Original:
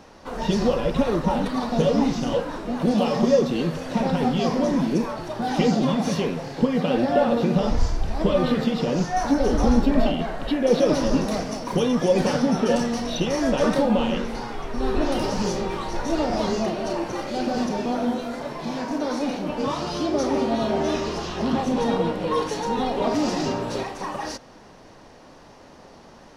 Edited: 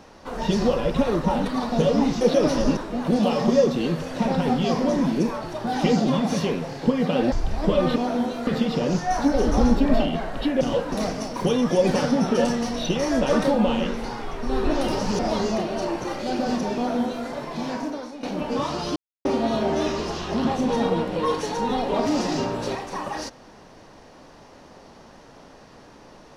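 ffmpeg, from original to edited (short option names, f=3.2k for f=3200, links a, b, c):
-filter_complex "[0:a]asplit=12[a][b][c][d][e][f][g][h][i][j][k][l];[a]atrim=end=2.212[m];[b]atrim=start=10.668:end=11.232[n];[c]atrim=start=2.518:end=7.072[o];[d]atrim=start=7.888:end=8.532[p];[e]atrim=start=17.838:end=18.352[q];[f]atrim=start=8.528:end=10.672[r];[g]atrim=start=2.208:end=2.522[s];[h]atrim=start=11.228:end=15.502[t];[i]atrim=start=16.268:end=19.31,asetpts=PTS-STARTPTS,afade=t=out:st=2.602:d=0.44:c=qua:silence=0.199526[u];[j]atrim=start=19.31:end=20.04,asetpts=PTS-STARTPTS,afade=t=in:d=0.004:c=hsin:silence=0.199526,afade=t=out:st=0.726:d=0.004:c=hsin[v];[k]atrim=start=20.04:end=20.33,asetpts=PTS-STARTPTS,volume=0[w];[l]atrim=start=20.33,asetpts=PTS-STARTPTS,afade=t=in:d=0.004:c=hsin[x];[m][n]acrossfade=d=0.004:c1=hsin:c2=hsin[y];[y][o]acrossfade=d=0.004:c1=hsin:c2=hsin[z];[z][p]acrossfade=d=0.004:c1=hsin:c2=hsin[aa];[aa][q]acrossfade=d=0.004:c1=hsin:c2=hsin[ab];[ab][r]acrossfade=d=0.004:c1=hsin:c2=hsin[ac];[ac][s]acrossfade=d=0.004:c1=hsin:c2=hsin[ad];[ad][t]acrossfade=d=0.004:c1=hsin:c2=hsin[ae];[u][v][w][x]concat=n=4:v=0:a=1[af];[ae][af]acrossfade=d=0.004:c1=hsin:c2=hsin"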